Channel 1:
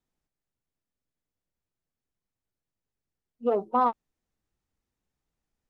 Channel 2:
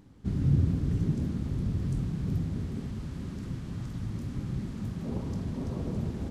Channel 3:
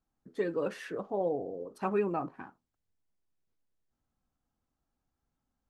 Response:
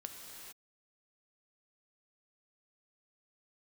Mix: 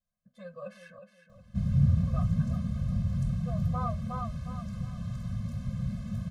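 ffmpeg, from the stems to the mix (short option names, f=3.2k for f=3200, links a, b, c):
-filter_complex "[0:a]volume=-7dB,asplit=2[a][b];[b]volume=-4.5dB[c];[1:a]adelay=1300,volume=1dB[d];[2:a]volume=-5.5dB,asplit=3[e][f][g];[e]atrim=end=0.99,asetpts=PTS-STARTPTS,afade=t=out:st=0.986:d=0.004:c=hsin[h];[f]atrim=start=0.99:end=2.07,asetpts=PTS-STARTPTS,volume=0[i];[g]atrim=start=2.07,asetpts=PTS-STARTPTS,afade=t=in:d=0.004:c=hsin[j];[h][i][j]concat=n=3:v=0:a=1,asplit=3[k][l][m];[l]volume=-10dB[n];[m]apad=whole_len=251282[o];[a][o]sidechaincompress=threshold=-57dB:ratio=8:attack=16:release=1160[p];[c][n]amix=inputs=2:normalize=0,aecho=0:1:363|726|1089|1452|1815:1|0.34|0.116|0.0393|0.0134[q];[p][d][k][q]amix=inputs=4:normalize=0,adynamicequalizer=threshold=0.00158:dfrequency=1200:dqfactor=5.9:tfrequency=1200:tqfactor=5.9:attack=5:release=100:ratio=0.375:range=2:mode=boostabove:tftype=bell,afftfilt=real='re*eq(mod(floor(b*sr/1024/250),2),0)':imag='im*eq(mod(floor(b*sr/1024/250),2),0)':win_size=1024:overlap=0.75"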